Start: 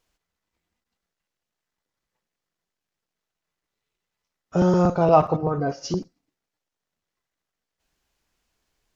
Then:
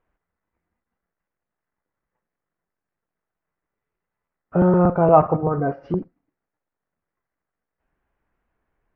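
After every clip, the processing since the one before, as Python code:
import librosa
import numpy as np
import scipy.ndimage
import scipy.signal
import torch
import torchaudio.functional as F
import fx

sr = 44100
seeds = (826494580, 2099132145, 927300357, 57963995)

y = scipy.signal.sosfilt(scipy.signal.butter(4, 1900.0, 'lowpass', fs=sr, output='sos'), x)
y = F.gain(torch.from_numpy(y), 2.5).numpy()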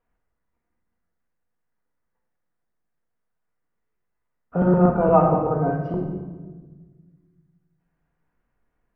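y = fx.room_shoebox(x, sr, seeds[0], volume_m3=1200.0, walls='mixed', distance_m=1.8)
y = F.gain(torch.from_numpy(y), -5.0).numpy()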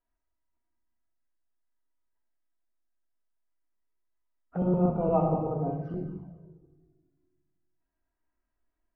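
y = fx.env_flanger(x, sr, rest_ms=3.1, full_db=-19.5)
y = fx.comb_fb(y, sr, f0_hz=160.0, decay_s=1.2, harmonics='all', damping=0.0, mix_pct=60)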